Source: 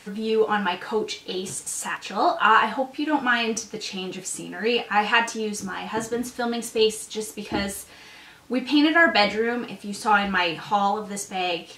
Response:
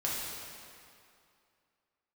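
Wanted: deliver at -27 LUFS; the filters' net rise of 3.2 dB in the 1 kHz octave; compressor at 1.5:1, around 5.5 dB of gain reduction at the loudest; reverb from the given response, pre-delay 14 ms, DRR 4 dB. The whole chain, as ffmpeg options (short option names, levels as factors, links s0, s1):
-filter_complex "[0:a]equalizer=f=1000:t=o:g=4,acompressor=threshold=0.0562:ratio=1.5,asplit=2[s0][s1];[1:a]atrim=start_sample=2205,adelay=14[s2];[s1][s2]afir=irnorm=-1:irlink=0,volume=0.316[s3];[s0][s3]amix=inputs=2:normalize=0,volume=0.708"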